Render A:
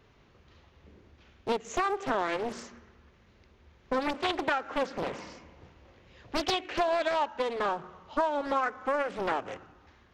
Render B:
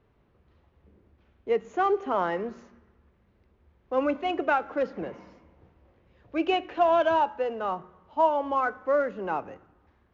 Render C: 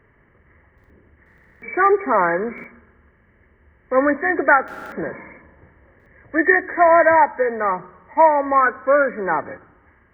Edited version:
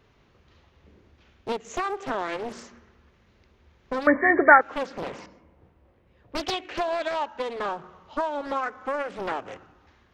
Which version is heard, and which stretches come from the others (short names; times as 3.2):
A
4.07–4.61 from C
5.26–6.35 from B